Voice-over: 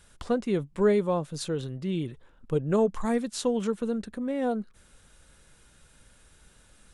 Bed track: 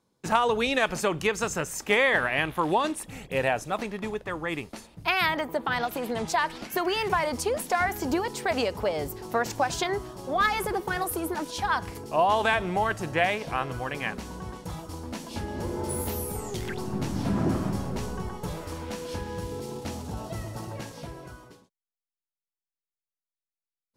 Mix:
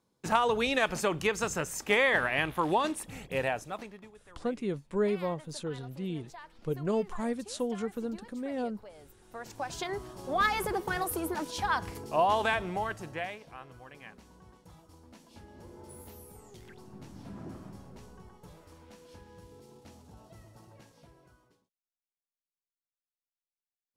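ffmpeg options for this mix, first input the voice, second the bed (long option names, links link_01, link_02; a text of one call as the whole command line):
ffmpeg -i stem1.wav -i stem2.wav -filter_complex "[0:a]adelay=4150,volume=-6dB[link_01];[1:a]volume=17dB,afade=type=out:start_time=3.24:duration=0.88:silence=0.1,afade=type=in:start_time=9.26:duration=1.11:silence=0.1,afade=type=out:start_time=12.25:duration=1.21:silence=0.177828[link_02];[link_01][link_02]amix=inputs=2:normalize=0" out.wav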